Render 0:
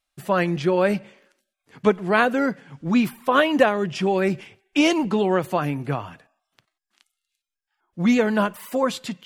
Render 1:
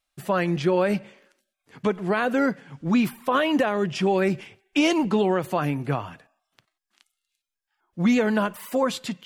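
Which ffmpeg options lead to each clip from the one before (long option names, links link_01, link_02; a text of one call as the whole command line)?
ffmpeg -i in.wav -af "alimiter=limit=-11.5dB:level=0:latency=1:release=89" out.wav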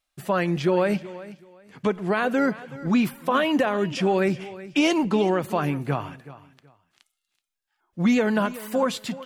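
ffmpeg -i in.wav -af "aecho=1:1:376|752:0.141|0.0325" out.wav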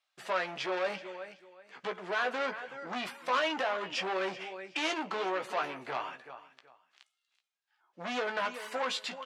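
ffmpeg -i in.wav -filter_complex "[0:a]asoftclip=type=tanh:threshold=-24.5dB,highpass=640,lowpass=5400,asplit=2[link_01][link_02];[link_02]adelay=16,volume=-7dB[link_03];[link_01][link_03]amix=inputs=2:normalize=0" out.wav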